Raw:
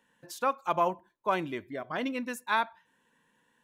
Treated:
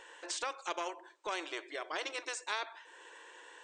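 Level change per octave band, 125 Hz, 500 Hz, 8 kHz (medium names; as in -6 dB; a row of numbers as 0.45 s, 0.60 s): under -30 dB, -9.5 dB, +5.0 dB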